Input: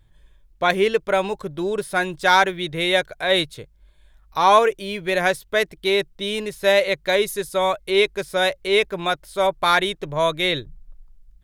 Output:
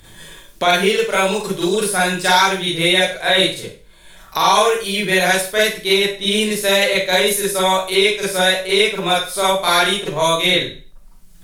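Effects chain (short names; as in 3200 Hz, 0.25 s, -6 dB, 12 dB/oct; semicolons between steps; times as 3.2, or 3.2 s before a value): bell 10000 Hz +10 dB 2.4 oct; Schroeder reverb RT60 0.34 s, combs from 33 ms, DRR -8.5 dB; three-band squash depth 70%; gain -6 dB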